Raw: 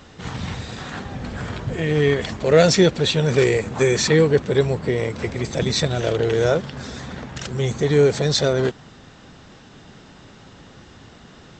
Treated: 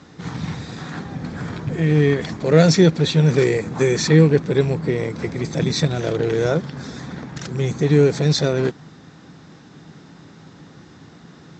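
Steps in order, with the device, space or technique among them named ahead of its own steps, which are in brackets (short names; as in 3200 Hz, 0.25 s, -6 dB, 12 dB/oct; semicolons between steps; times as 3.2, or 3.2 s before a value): car door speaker with a rattle (rattling part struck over -21 dBFS, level -26 dBFS; speaker cabinet 90–7500 Hz, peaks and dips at 160 Hz +9 dB, 300 Hz +6 dB, 600 Hz -3 dB, 2900 Hz -7 dB); gain -1 dB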